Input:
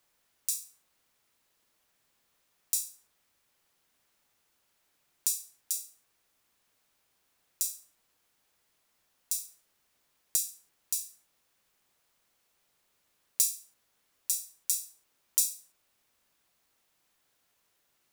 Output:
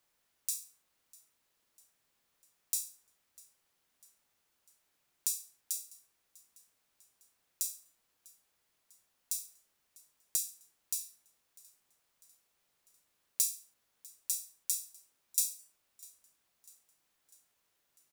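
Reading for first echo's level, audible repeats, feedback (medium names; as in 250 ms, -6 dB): -23.5 dB, 3, 55%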